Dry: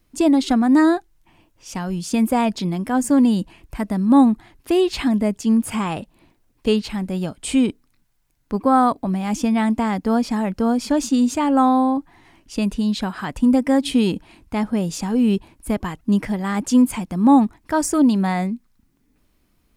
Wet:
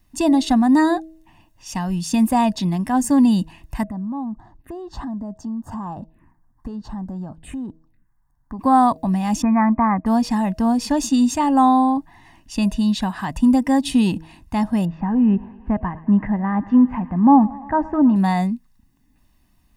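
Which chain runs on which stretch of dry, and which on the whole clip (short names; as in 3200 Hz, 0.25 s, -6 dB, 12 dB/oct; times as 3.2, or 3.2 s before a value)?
3.83–8.59 resonant high shelf 2100 Hz -12.5 dB, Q 1.5 + envelope phaser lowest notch 420 Hz, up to 2300 Hz, full sweep at -23 dBFS + compressor 4:1, threshold -29 dBFS
9.42–10.06 brick-wall FIR low-pass 2500 Hz + bell 1200 Hz +12 dB 0.4 oct
14.85–18.16 LPF 1800 Hz 24 dB/oct + thinning echo 0.112 s, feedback 77%, high-pass 210 Hz, level -20 dB
whole clip: comb 1.1 ms, depth 66%; de-hum 160.2 Hz, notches 4; dynamic EQ 2000 Hz, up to -4 dB, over -33 dBFS, Q 1.3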